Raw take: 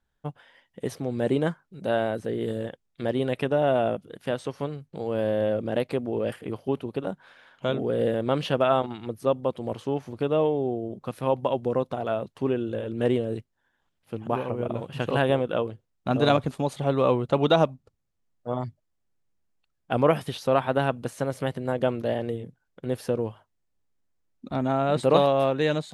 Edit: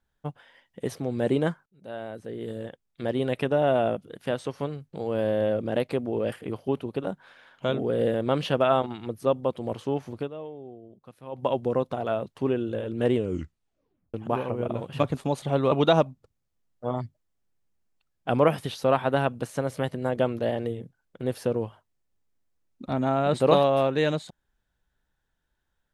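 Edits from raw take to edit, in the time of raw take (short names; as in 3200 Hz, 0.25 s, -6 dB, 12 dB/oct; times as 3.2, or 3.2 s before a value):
1.66–3.34 fade in, from -21 dB
10.16–11.46 dip -15.5 dB, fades 0.15 s
13.14 tape stop 1.00 s
15–16.34 cut
17.06–17.35 cut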